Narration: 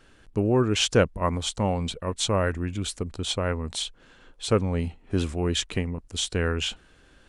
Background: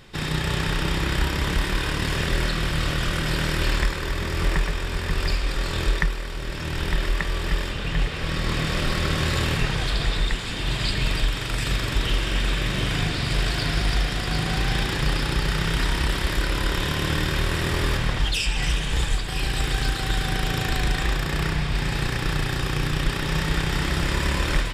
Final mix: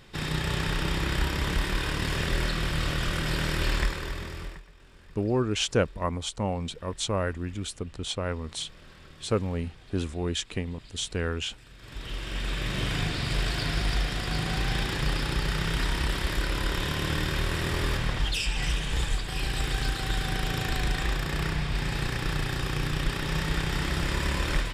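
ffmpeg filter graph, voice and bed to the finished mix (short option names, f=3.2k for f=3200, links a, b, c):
-filter_complex "[0:a]adelay=4800,volume=-4dB[a];[1:a]volume=19dB,afade=t=out:st=3.85:d=0.77:silence=0.0668344,afade=t=in:st=11.76:d=1.06:silence=0.0707946[b];[a][b]amix=inputs=2:normalize=0"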